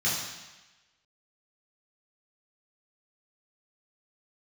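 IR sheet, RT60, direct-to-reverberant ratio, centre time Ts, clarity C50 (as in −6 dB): 1.1 s, −8.0 dB, 68 ms, 1.5 dB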